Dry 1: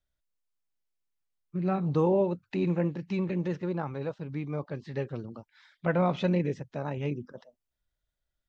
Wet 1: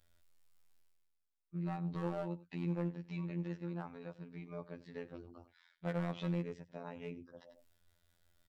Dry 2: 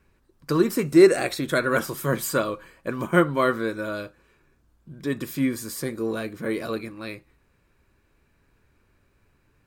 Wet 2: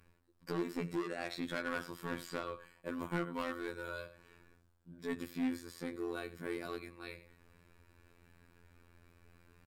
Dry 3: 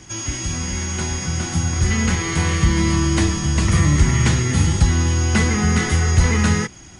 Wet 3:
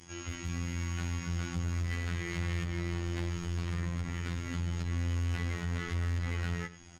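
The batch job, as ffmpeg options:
-filter_complex "[0:a]aecho=1:1:93:0.119,acrossover=split=200|4900[s0][s1][s2];[s2]acompressor=threshold=0.00398:ratio=10[s3];[s0][s1][s3]amix=inputs=3:normalize=0,alimiter=limit=0.251:level=0:latency=1:release=268,asoftclip=type=hard:threshold=0.0841,areverse,acompressor=mode=upward:threshold=0.00891:ratio=2.5,areverse,afftfilt=real='hypot(re,im)*cos(PI*b)':imag='0':win_size=2048:overlap=0.75,bandreject=f=6200:w=16,adynamicequalizer=threshold=0.00562:dfrequency=470:dqfactor=1.1:tfrequency=470:tqfactor=1.1:attack=5:release=100:ratio=0.375:range=2:mode=cutabove:tftype=bell,volume=0.473" -ar 48000 -c:a libmp3lame -b:a 112k

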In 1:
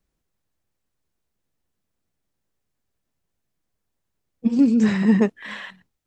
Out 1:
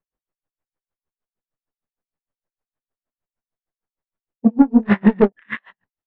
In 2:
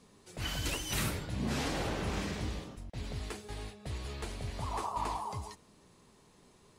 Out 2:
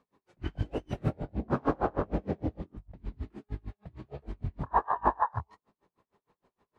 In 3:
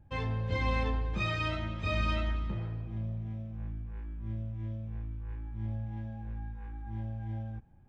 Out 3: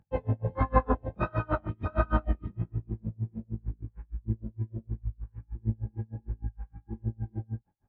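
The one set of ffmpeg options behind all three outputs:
-af "lowpass=f=1500:p=1,afwtdn=0.0178,equalizer=f=1100:w=0.34:g=11,acontrast=87,flanger=delay=18.5:depth=7.8:speed=1.4,aeval=exprs='val(0)*pow(10,-34*(0.5-0.5*cos(2*PI*6.5*n/s))/20)':c=same,volume=1.41"

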